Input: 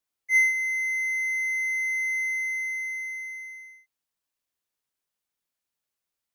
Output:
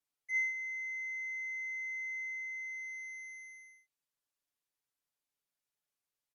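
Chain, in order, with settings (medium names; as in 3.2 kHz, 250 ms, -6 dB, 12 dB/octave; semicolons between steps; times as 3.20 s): comb 7 ms, depth 83%; low-pass that closes with the level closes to 2.7 kHz, closed at -30.5 dBFS; trim -7.5 dB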